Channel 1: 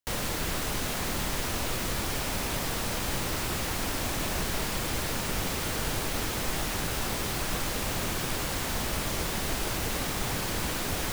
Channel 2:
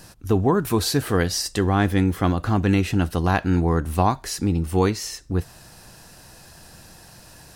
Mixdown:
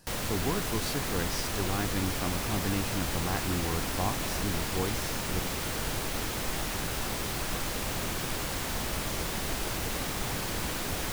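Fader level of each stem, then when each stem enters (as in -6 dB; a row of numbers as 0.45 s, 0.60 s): -2.0 dB, -13.0 dB; 0.00 s, 0.00 s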